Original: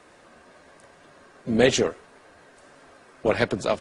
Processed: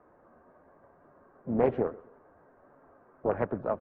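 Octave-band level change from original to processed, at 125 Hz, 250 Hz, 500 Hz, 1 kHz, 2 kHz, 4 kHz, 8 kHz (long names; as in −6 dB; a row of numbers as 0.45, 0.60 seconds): −6.5 dB, −6.5 dB, −6.0 dB, −4.0 dB, −17.0 dB, below −35 dB, below −40 dB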